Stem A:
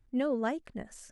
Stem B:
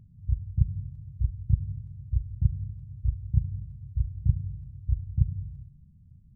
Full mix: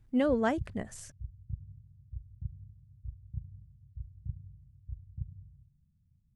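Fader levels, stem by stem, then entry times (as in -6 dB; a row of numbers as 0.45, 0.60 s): +3.0, -15.5 dB; 0.00, 0.00 s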